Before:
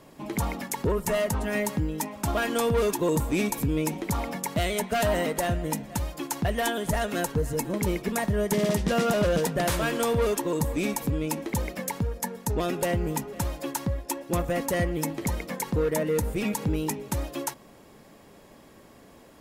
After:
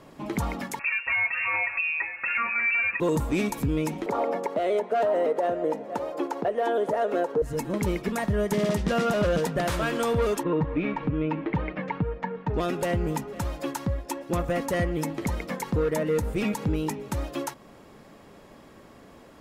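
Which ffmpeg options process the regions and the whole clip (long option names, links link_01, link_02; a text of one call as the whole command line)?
ffmpeg -i in.wav -filter_complex "[0:a]asettb=1/sr,asplit=3[link_01][link_02][link_03];[link_01]atrim=end=0.794[link_04];[link_02]atrim=start=0.79:end=3,asetpts=PTS-STARTPTS,afade=type=in:duration=0.004:curve=qsin,afade=type=out:start_time=2.206:duration=0.004:curve=qsin,equalizer=frequency=180:width_type=o:width=0.37:gain=-11.5,aecho=1:1:6.6:0.98,atrim=end_sample=97461,lowpass=frequency=2400:width_type=q:width=0.5098,lowpass=frequency=2400:width_type=q:width=0.6013,lowpass=frequency=2400:width_type=q:width=0.9,lowpass=frequency=2400:width_type=q:width=2.563,afreqshift=-2800[link_05];[link_03]atrim=start=2.996[link_06];[link_04][link_05]acrossfade=duration=0.004:curve1=hsin:curve2=qsin[link_07];[link_07][link_06]acrossfade=duration=0.004:curve1=qsin:curve2=hsin,asettb=1/sr,asplit=3[link_08][link_09][link_10];[link_08]atrim=end=4.064[link_11];[link_09]atrim=start=4.06:end=7.42,asetpts=PTS-STARTPTS,afade=type=in:duration=0.004:curve=qsin,afade=type=out:start_time=3.356:duration=0.004:curve=qsin,acrossover=split=5900[link_12][link_13];[link_13]acompressor=threshold=-37dB:ratio=4:attack=1:release=60[link_14];[link_12][link_14]amix=inputs=2:normalize=0,highpass=frequency=470:width_type=q:width=2,tiltshelf=frequency=1300:gain=8[link_15];[link_10]atrim=start=7.416[link_16];[link_11][link_15]acrossfade=duration=0.004:curve1=hsin:curve2=qsin[link_17];[link_17][link_16]acrossfade=duration=0.004:curve1=qsin:curve2=hsin,asettb=1/sr,asplit=3[link_18][link_19][link_20];[link_18]atrim=end=10.434[link_21];[link_19]atrim=start=10.43:end=12.54,asetpts=PTS-STARTPTS,afade=type=in:duration=0.004:curve=qsin,afade=type=out:start_time=2.106:duration=0.004:curve=qsin,lowpass=frequency=2800:width=0.5412,lowpass=frequency=2800:width=1.3066,aecho=1:1:6.5:0.55,atrim=end_sample=93051[link_22];[link_20]atrim=start=12.536[link_23];[link_21][link_22]acrossfade=duration=0.004:curve1=hsin:curve2=qsin[link_24];[link_24][link_23]acrossfade=duration=0.004:curve1=qsin:curve2=hsin,equalizer=frequency=1300:width_type=o:width=0.3:gain=3.5,alimiter=limit=-19dB:level=0:latency=1:release=231,highshelf=frequency=7400:gain=-9.5,volume=2dB" out.wav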